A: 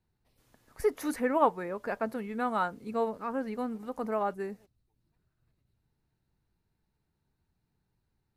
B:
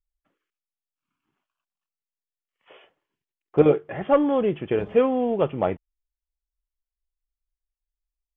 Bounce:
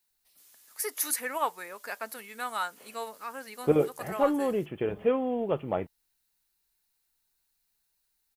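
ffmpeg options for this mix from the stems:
ffmpeg -i stem1.wav -i stem2.wav -filter_complex "[0:a]crystalizer=i=6.5:c=0,highpass=frequency=1100:poles=1,volume=-2.5dB[link_01];[1:a]adelay=100,volume=-6.5dB[link_02];[link_01][link_02]amix=inputs=2:normalize=0" out.wav

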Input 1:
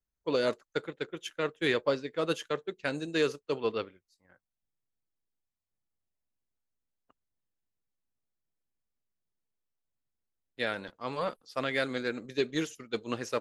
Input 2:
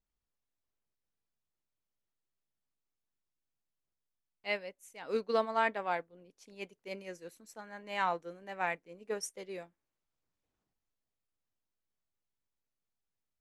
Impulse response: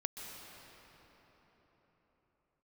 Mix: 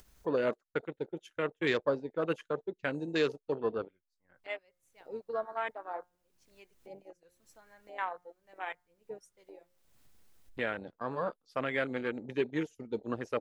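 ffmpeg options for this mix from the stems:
-filter_complex "[0:a]agate=range=-15dB:threshold=-54dB:ratio=16:detection=peak,acompressor=mode=upward:threshold=-29dB:ratio=2.5,volume=-1.5dB[link_01];[1:a]bandreject=frequency=178:width_type=h:width=4,bandreject=frequency=356:width_type=h:width=4,bandreject=frequency=534:width_type=h:width=4,bandreject=frequency=712:width_type=h:width=4,bandreject=frequency=890:width_type=h:width=4,bandreject=frequency=1068:width_type=h:width=4,bandreject=frequency=1246:width_type=h:width=4,bandreject=frequency=1424:width_type=h:width=4,bandreject=frequency=1602:width_type=h:width=4,bandreject=frequency=1780:width_type=h:width=4,bandreject=frequency=1958:width_type=h:width=4,bandreject=frequency=2136:width_type=h:width=4,asubboost=boost=11.5:cutoff=63,aphaser=in_gain=1:out_gain=1:delay=3.3:decay=0.31:speed=1:type=sinusoidal,volume=-5dB[link_02];[link_01][link_02]amix=inputs=2:normalize=0,afwtdn=0.0112,acompressor=mode=upward:threshold=-47dB:ratio=2.5"

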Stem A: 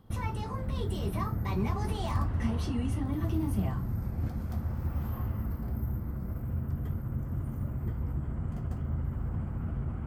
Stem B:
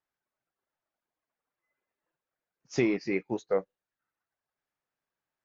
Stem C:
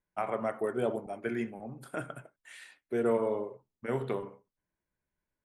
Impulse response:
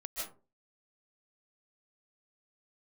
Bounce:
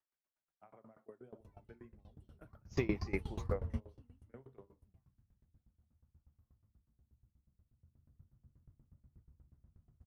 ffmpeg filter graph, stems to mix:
-filter_complex "[0:a]adelay=1300,volume=-3.5dB,afade=type=out:start_time=4:duration=0.42:silence=0.281838,afade=type=in:start_time=7.75:duration=0.45:silence=0.446684[link_01];[1:a]lowshelf=frequency=310:gain=-6.5,volume=-2.5dB,asplit=2[link_02][link_03];[2:a]highshelf=frequency=3000:gain=-11.5,adelay=450,volume=-19.5dB[link_04];[link_03]apad=whole_len=500980[link_05];[link_01][link_05]sidechaingate=range=-18dB:threshold=-56dB:ratio=16:detection=peak[link_06];[link_06][link_02][link_04]amix=inputs=3:normalize=0,lowshelf=frequency=170:gain=10,aeval=exprs='val(0)*pow(10,-22*if(lt(mod(8.3*n/s,1),2*abs(8.3)/1000),1-mod(8.3*n/s,1)/(2*abs(8.3)/1000),(mod(8.3*n/s,1)-2*abs(8.3)/1000)/(1-2*abs(8.3)/1000))/20)':channel_layout=same"

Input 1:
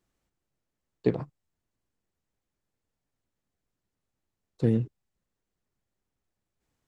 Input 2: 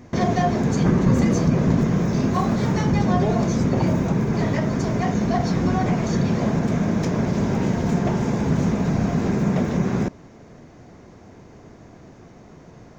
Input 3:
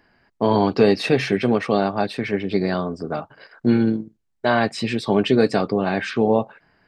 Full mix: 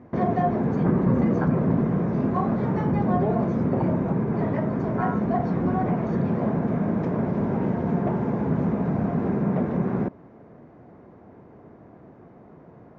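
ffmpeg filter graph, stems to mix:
ffmpeg -i stem1.wav -i stem2.wav -filter_complex "[0:a]aeval=exprs='val(0)*sin(2*PI*1200*n/s)':channel_layout=same,adelay=350,volume=-4.5dB[link_01];[1:a]highpass=frequency=150:poles=1,volume=-1dB[link_02];[link_01][link_02]amix=inputs=2:normalize=0,lowpass=1300" out.wav

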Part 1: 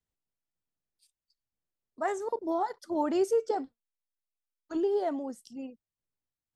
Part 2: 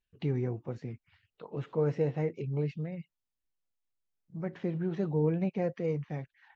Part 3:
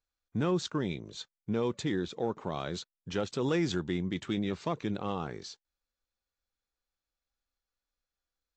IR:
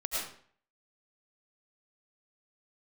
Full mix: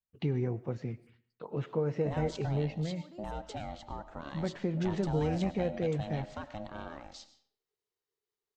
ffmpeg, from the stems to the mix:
-filter_complex "[0:a]acompressor=threshold=-33dB:ratio=6,volume=-10.5dB[link_01];[1:a]agate=range=-33dB:threshold=-55dB:ratio=3:detection=peak,acompressor=threshold=-29dB:ratio=6,volume=2dB,asplit=3[link_02][link_03][link_04];[link_03]volume=-23dB[link_05];[2:a]acompressor=threshold=-42dB:ratio=1.5,aeval=exprs='val(0)*sin(2*PI*420*n/s)':channel_layout=same,adelay=1700,volume=-2dB,asplit=2[link_06][link_07];[link_07]volume=-16dB[link_08];[link_04]apad=whole_len=288961[link_09];[link_01][link_09]sidechaincompress=threshold=-37dB:ratio=8:attack=16:release=1370[link_10];[3:a]atrim=start_sample=2205[link_11];[link_05][link_08]amix=inputs=2:normalize=0[link_12];[link_12][link_11]afir=irnorm=-1:irlink=0[link_13];[link_10][link_02][link_06][link_13]amix=inputs=4:normalize=0"

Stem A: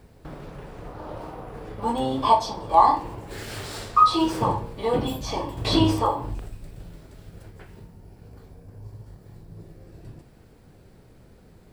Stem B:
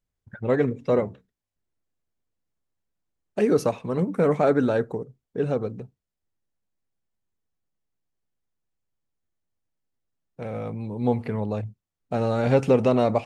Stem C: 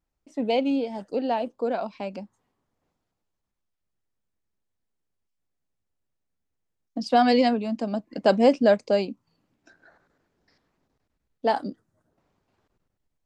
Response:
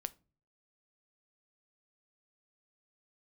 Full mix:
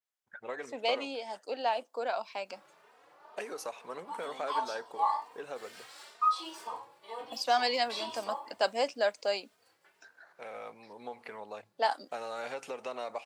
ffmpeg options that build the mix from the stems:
-filter_complex "[0:a]highshelf=frequency=8500:gain=-7,asplit=2[link_01][link_02];[link_02]adelay=3,afreqshift=2.1[link_03];[link_01][link_03]amix=inputs=2:normalize=1,adelay=2250,volume=-11.5dB,asplit=2[link_04][link_05];[link_05]volume=-8.5dB[link_06];[1:a]acompressor=threshold=-24dB:ratio=6,volume=-2.5dB[link_07];[2:a]dynaudnorm=framelen=110:gausssize=3:maxgain=10.5dB,adelay=350,volume=-11dB,asplit=2[link_08][link_09];[link_09]volume=-13dB[link_10];[3:a]atrim=start_sample=2205[link_11];[link_06][link_10]amix=inputs=2:normalize=0[link_12];[link_12][link_11]afir=irnorm=-1:irlink=0[link_13];[link_04][link_07][link_08][link_13]amix=inputs=4:normalize=0,highpass=820,adynamicequalizer=threshold=0.00316:dfrequency=4900:dqfactor=0.7:tfrequency=4900:tqfactor=0.7:attack=5:release=100:ratio=0.375:range=3:mode=boostabove:tftype=highshelf"

